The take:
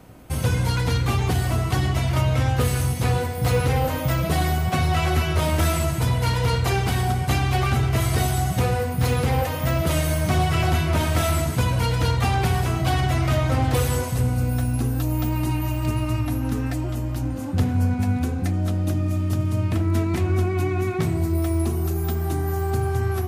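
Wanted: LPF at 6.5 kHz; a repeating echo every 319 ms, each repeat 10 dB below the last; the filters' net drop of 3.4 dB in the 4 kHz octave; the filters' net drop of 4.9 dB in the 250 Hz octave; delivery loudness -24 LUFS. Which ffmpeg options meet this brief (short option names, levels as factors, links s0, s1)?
-af "lowpass=6500,equalizer=f=250:t=o:g=-8,equalizer=f=4000:t=o:g=-4,aecho=1:1:319|638|957|1276:0.316|0.101|0.0324|0.0104"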